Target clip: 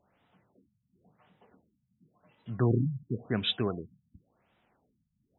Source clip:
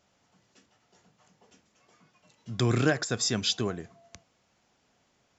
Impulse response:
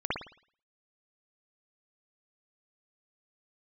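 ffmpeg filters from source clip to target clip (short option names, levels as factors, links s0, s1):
-af "afftfilt=real='re*lt(b*sr/1024,210*pow(4000/210,0.5+0.5*sin(2*PI*0.93*pts/sr)))':imag='im*lt(b*sr/1024,210*pow(4000/210,0.5+0.5*sin(2*PI*0.93*pts/sr)))':win_size=1024:overlap=0.75"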